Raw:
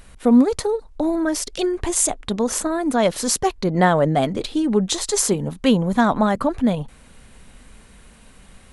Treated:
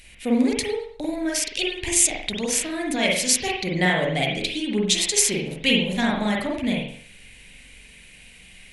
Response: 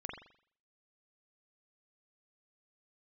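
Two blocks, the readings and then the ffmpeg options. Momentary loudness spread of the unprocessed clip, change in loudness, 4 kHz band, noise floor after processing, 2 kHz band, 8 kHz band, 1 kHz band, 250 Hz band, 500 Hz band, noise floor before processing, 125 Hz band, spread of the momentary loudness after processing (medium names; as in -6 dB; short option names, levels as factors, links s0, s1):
7 LU, -2.0 dB, +5.5 dB, -48 dBFS, +4.5 dB, +1.5 dB, -8.0 dB, -5.5 dB, -6.0 dB, -48 dBFS, -5.5 dB, 8 LU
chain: -filter_complex "[0:a]highshelf=f=1700:t=q:w=3:g=10.5[s0];[1:a]atrim=start_sample=2205,afade=t=out:st=0.39:d=0.01,atrim=end_sample=17640,asetrate=42777,aresample=44100[s1];[s0][s1]afir=irnorm=-1:irlink=0,volume=0.596"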